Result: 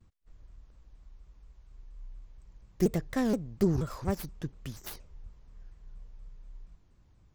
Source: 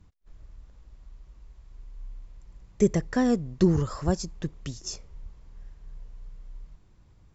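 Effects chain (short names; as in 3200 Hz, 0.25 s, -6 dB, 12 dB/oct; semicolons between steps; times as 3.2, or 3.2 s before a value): tracing distortion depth 0.31 ms; shaped vibrato saw down 4.2 Hz, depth 250 cents; gain -5 dB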